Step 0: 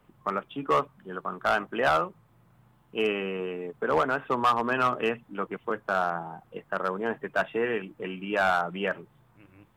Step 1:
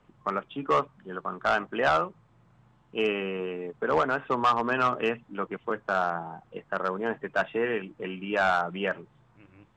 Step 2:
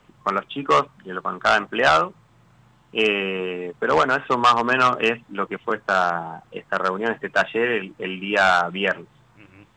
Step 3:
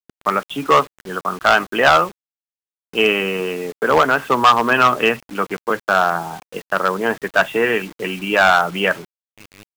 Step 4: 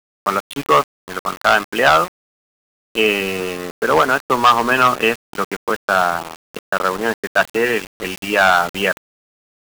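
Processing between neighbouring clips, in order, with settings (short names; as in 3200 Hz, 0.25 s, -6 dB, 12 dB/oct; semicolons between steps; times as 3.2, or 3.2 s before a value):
steep low-pass 7900 Hz 36 dB/oct
high shelf 2000 Hz +9 dB; gain +5 dB
bit-crush 7-bit; gain +4 dB
sample gate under -25.5 dBFS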